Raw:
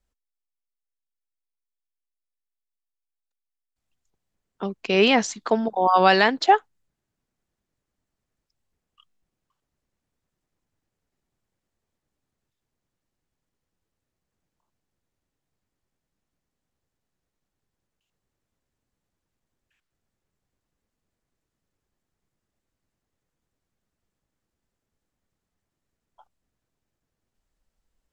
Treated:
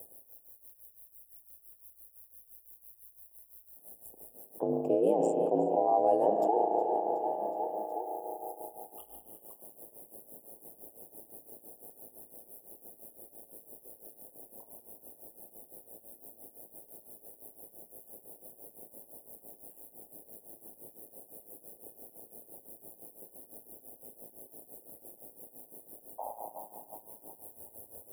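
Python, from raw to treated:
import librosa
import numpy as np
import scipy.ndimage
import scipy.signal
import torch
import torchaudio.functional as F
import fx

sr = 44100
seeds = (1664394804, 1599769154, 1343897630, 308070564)

p1 = 10.0 ** (-5.0 / 20.0) * np.tanh(x / 10.0 ** (-5.0 / 20.0))
p2 = scipy.signal.sosfilt(scipy.signal.cheby2(4, 40, [1200.0, 6600.0], 'bandstop', fs=sr, output='sos'), p1)
p3 = fx.high_shelf(p2, sr, hz=5900.0, db=11.0)
p4 = fx.rev_spring(p3, sr, rt60_s=2.3, pass_ms=(35,), chirp_ms=55, drr_db=6.0)
p5 = p4 * np.sin(2.0 * np.pi * 55.0 * np.arange(len(p4)) / sr)
p6 = scipy.signal.sosfilt(scipy.signal.butter(2, 450.0, 'highpass', fs=sr, output='sos'), p5)
p7 = p6 + fx.echo_feedback(p6, sr, ms=368, feedback_pct=47, wet_db=-17.0, dry=0)
p8 = p7 * (1.0 - 0.79 / 2.0 + 0.79 / 2.0 * np.cos(2.0 * np.pi * 5.9 * (np.arange(len(p7)) / sr)))
y = fx.env_flatten(p8, sr, amount_pct=70)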